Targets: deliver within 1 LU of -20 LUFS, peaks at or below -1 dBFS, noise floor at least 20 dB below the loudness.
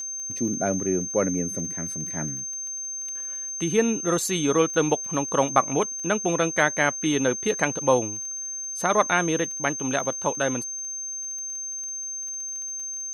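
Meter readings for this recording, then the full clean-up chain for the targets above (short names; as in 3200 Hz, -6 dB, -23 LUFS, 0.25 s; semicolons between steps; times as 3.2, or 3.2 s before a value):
ticks 18/s; steady tone 6300 Hz; tone level -30 dBFS; loudness -25.0 LUFS; peak -3.0 dBFS; loudness target -20.0 LUFS
-> de-click; notch 6300 Hz, Q 30; gain +5 dB; limiter -1 dBFS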